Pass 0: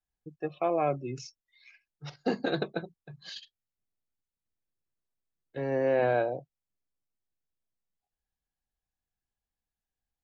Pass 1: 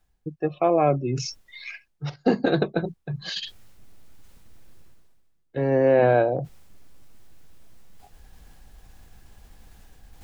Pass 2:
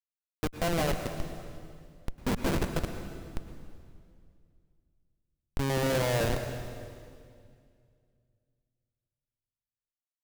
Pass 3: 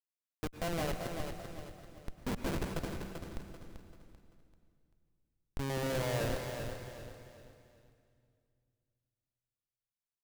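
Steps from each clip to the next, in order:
tilt EQ -1.5 dB/octave; reverse; upward compressor, threshold -29 dBFS; reverse; trim +6.5 dB
Schmitt trigger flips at -20.5 dBFS; on a send at -7 dB: reverberation RT60 2.2 s, pre-delay 97 ms
feedback delay 389 ms, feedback 36%, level -7 dB; trim -7 dB

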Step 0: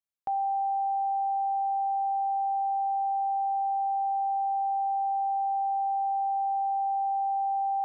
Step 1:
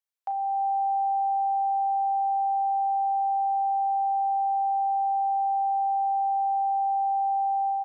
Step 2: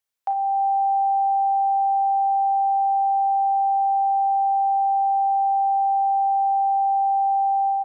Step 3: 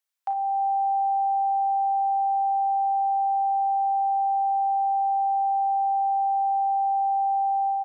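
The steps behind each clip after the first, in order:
high-pass 600 Hz 24 dB/octave; early reflections 34 ms -11 dB, 45 ms -14 dB; level rider gain up to 5 dB
flutter echo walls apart 9.9 m, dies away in 0.27 s; trim +6.5 dB
high-pass 720 Hz; trim -1 dB

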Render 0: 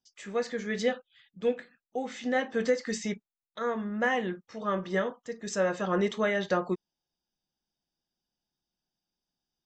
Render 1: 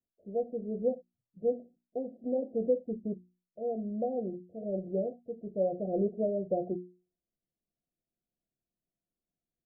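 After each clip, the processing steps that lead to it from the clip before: Chebyshev low-pass 730 Hz, order 10; hum notches 60/120/180/240/300/360 Hz; trim -1 dB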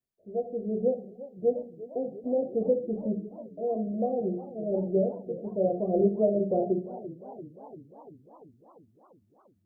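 level rider gain up to 5 dB; reverberation RT60 0.55 s, pre-delay 4 ms, DRR 4 dB; modulated delay 346 ms, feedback 69%, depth 151 cents, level -17 dB; trim -1.5 dB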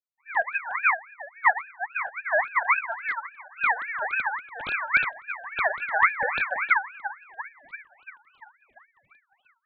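formants replaced by sine waves; static phaser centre 320 Hz, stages 4; ring modulator with a swept carrier 1.6 kHz, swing 30%, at 3.6 Hz; trim +8 dB

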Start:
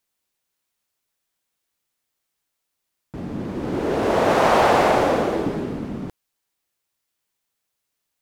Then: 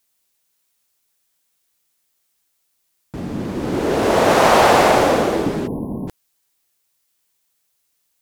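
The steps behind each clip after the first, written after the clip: treble shelf 4.1 kHz +8 dB; spectral selection erased 5.67–6.08 s, 1.1–10 kHz; trim +3.5 dB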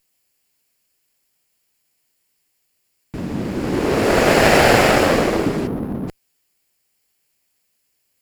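comb filter that takes the minimum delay 0.4 ms; trim +1.5 dB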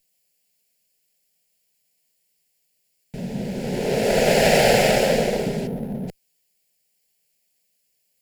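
static phaser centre 310 Hz, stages 6; trim -1 dB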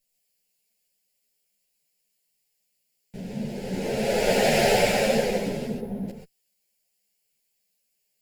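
gated-style reverb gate 150 ms rising, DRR 2 dB; three-phase chorus; trim -3 dB

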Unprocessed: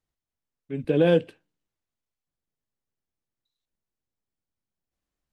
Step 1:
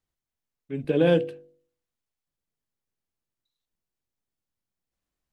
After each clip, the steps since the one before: de-hum 49.08 Hz, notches 16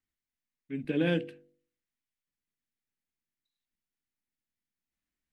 ten-band graphic EQ 125 Hz -3 dB, 250 Hz +7 dB, 500 Hz -6 dB, 1 kHz -4 dB, 2 kHz +8 dB; trim -6.5 dB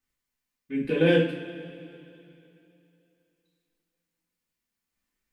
two-slope reverb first 0.36 s, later 2.9 s, from -18 dB, DRR -5 dB; trim +2 dB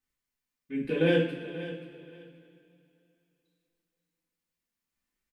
feedback delay 533 ms, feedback 20%, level -14 dB; trim -3.5 dB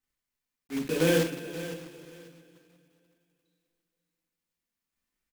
block-companded coder 3-bit

